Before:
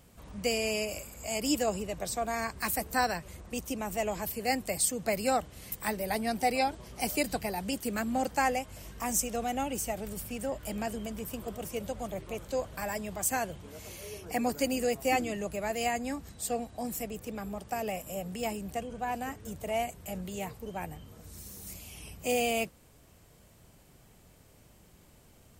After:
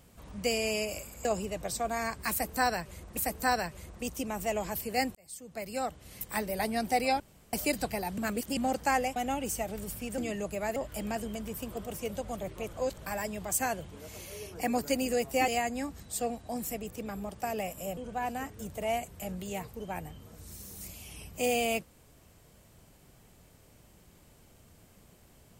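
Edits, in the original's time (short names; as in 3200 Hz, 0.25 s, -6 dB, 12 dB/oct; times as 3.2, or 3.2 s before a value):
1.25–1.62 cut
2.68–3.54 loop, 2 plays
4.66–5.93 fade in
6.71–7.04 room tone
7.69–8.08 reverse
8.67–9.45 cut
12.44–12.69 reverse
15.19–15.77 move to 10.47
18.26–18.83 cut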